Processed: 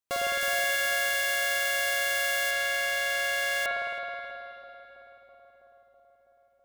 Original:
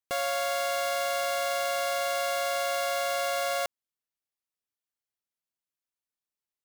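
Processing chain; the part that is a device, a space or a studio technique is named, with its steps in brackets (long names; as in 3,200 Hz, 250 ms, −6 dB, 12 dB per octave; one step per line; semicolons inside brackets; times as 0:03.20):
0:00.41–0:02.51: high-shelf EQ 7,200 Hz +6.5 dB
dub delay into a spring reverb (feedback echo with a low-pass in the loop 326 ms, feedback 77%, low-pass 1,900 Hz, level −12.5 dB; spring reverb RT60 2.8 s, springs 53 ms, chirp 25 ms, DRR −4 dB)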